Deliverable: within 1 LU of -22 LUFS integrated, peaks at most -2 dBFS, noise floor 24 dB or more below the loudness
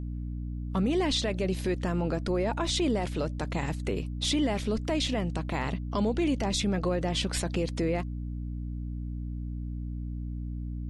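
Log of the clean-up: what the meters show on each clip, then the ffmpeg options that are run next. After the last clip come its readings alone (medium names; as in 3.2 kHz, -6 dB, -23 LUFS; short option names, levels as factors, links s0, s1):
hum 60 Hz; highest harmonic 300 Hz; hum level -32 dBFS; loudness -30.5 LUFS; peak level -17.0 dBFS; loudness target -22.0 LUFS
-> -af "bandreject=f=60:t=h:w=6,bandreject=f=120:t=h:w=6,bandreject=f=180:t=h:w=6,bandreject=f=240:t=h:w=6,bandreject=f=300:t=h:w=6"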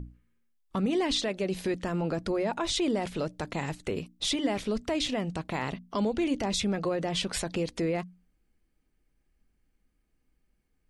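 hum not found; loudness -30.5 LUFS; peak level -17.5 dBFS; loudness target -22.0 LUFS
-> -af "volume=2.66"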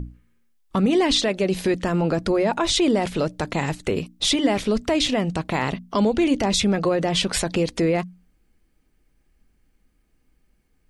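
loudness -22.0 LUFS; peak level -9.0 dBFS; noise floor -66 dBFS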